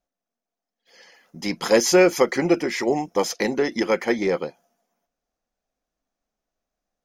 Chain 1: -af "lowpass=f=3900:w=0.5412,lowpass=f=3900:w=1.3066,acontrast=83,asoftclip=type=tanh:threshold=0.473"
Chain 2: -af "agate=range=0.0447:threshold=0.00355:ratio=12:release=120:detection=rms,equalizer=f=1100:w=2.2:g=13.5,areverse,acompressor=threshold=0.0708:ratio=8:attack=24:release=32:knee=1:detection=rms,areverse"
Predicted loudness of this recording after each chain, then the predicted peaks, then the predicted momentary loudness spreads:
-17.5 LUFS, -25.0 LUFS; -7.5 dBFS, -10.5 dBFS; 8 LU, 6 LU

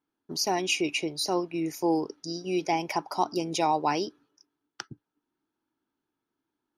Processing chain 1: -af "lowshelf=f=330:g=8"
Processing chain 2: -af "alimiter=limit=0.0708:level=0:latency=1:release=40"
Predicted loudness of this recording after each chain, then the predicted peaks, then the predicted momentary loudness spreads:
-26.5 LUFS, -33.0 LUFS; -10.5 dBFS, -23.0 dBFS; 15 LU, 13 LU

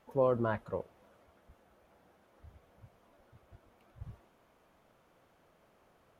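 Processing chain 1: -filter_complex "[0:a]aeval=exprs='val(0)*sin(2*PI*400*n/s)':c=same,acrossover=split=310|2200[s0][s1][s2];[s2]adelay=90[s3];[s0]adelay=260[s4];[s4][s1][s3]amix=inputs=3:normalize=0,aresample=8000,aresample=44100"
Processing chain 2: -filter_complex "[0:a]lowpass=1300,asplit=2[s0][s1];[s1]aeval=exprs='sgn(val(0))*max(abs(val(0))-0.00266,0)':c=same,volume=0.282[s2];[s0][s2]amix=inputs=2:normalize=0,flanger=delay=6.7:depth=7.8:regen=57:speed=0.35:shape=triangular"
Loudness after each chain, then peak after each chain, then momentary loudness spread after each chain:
-38.0 LUFS, -35.0 LUFS; -21.5 dBFS, -17.0 dBFS; 22 LU, 23 LU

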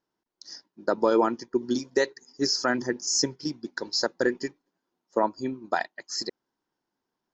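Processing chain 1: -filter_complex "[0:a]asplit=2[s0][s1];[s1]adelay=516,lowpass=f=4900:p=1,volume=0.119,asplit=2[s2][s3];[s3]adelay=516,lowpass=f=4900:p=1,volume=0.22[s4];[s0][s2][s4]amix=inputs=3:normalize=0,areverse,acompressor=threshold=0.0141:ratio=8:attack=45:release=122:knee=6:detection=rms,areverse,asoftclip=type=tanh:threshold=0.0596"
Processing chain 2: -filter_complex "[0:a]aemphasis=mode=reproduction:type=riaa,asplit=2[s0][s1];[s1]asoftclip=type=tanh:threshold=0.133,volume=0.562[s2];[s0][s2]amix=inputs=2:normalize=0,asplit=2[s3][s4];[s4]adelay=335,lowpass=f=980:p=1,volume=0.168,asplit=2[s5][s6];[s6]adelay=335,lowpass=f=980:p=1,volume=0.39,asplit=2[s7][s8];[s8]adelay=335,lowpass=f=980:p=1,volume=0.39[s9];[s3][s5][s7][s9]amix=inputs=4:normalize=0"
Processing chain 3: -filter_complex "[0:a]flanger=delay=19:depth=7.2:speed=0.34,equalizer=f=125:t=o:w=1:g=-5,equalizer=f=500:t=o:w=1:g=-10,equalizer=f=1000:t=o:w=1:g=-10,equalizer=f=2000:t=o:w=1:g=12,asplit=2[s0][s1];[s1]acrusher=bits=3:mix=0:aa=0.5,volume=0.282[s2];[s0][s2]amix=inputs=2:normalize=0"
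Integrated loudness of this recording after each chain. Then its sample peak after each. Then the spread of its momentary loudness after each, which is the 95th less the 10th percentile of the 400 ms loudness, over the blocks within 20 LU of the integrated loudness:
-40.0 LUFS, -22.5 LUFS, -30.0 LUFS; -25.0 dBFS, -5.5 dBFS, -12.0 dBFS; 10 LU, 14 LU, 15 LU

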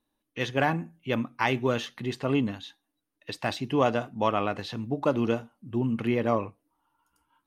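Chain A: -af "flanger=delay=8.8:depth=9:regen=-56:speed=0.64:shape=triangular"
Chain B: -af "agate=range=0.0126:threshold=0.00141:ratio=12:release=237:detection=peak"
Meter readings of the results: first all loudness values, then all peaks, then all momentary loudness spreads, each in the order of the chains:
-32.5 LUFS, -28.5 LUFS; -14.0 dBFS, -9.5 dBFS; 9 LU, 9 LU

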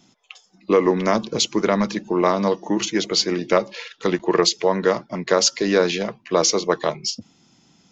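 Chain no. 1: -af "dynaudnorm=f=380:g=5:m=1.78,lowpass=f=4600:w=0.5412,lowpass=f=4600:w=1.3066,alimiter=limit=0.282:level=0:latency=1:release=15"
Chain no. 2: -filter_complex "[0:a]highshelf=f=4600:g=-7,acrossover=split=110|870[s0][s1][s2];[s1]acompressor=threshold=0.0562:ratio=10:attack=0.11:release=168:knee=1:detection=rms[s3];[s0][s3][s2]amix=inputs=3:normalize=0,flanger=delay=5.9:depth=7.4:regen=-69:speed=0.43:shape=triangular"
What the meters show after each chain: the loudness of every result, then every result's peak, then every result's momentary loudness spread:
-22.5 LUFS, -31.0 LUFS; -11.0 dBFS, -12.5 dBFS; 6 LU, 8 LU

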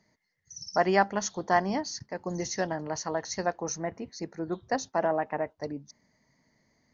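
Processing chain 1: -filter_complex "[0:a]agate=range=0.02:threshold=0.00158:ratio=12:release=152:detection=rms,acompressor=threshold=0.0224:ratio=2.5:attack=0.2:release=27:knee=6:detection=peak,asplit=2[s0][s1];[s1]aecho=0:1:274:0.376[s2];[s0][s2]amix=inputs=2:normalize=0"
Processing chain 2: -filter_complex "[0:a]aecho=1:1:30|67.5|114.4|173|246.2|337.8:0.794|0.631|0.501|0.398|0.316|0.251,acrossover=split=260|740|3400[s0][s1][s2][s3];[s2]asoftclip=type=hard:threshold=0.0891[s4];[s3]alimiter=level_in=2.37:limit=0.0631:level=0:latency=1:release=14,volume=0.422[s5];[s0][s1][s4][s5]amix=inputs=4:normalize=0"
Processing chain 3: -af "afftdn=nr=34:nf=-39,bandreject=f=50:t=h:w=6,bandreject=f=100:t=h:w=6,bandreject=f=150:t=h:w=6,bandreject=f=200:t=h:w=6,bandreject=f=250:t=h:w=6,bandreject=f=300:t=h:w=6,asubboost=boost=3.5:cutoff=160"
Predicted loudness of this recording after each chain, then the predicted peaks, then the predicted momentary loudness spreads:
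-37.5 LUFS, -26.5 LUFS, -31.5 LUFS; -22.5 dBFS, -9.0 dBFS, -9.5 dBFS; 7 LU, 12 LU, 14 LU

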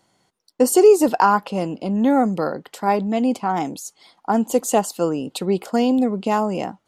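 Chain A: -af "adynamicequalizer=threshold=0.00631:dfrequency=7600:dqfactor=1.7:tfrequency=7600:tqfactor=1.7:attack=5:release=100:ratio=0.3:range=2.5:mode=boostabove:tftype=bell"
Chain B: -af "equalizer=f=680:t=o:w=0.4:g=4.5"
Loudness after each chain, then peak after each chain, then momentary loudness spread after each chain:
-19.5 LUFS, -19.0 LUFS; -3.0 dBFS, -2.0 dBFS; 12 LU, 12 LU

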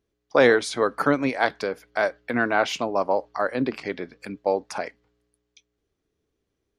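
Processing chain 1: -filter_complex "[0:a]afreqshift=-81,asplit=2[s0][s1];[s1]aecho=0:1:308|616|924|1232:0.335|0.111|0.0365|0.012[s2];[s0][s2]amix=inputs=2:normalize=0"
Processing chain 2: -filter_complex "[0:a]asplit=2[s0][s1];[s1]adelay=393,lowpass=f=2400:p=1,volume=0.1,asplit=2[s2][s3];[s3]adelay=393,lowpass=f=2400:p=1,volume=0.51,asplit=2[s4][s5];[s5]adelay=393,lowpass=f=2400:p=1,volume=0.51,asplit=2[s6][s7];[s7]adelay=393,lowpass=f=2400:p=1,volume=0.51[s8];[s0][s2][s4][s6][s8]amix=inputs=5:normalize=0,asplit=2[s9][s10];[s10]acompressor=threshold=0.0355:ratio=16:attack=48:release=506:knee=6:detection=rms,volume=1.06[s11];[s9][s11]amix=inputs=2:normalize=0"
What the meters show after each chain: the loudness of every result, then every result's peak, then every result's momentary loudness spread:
-24.0 LUFS, -22.0 LUFS; -6.0 dBFS, -3.5 dBFS; 14 LU, 12 LU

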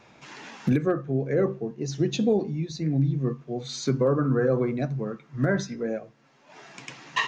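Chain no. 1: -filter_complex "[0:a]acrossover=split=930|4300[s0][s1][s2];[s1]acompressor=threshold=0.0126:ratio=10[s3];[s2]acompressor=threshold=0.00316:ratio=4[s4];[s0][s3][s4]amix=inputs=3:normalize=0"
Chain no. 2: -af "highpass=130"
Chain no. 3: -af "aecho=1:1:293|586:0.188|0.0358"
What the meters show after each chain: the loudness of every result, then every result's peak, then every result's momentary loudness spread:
-27.0 LUFS, -27.5 LUFS, -26.5 LUFS; -12.5 dBFS, -11.5 dBFS, -12.0 dBFS; 17 LU, 16 LU, 19 LU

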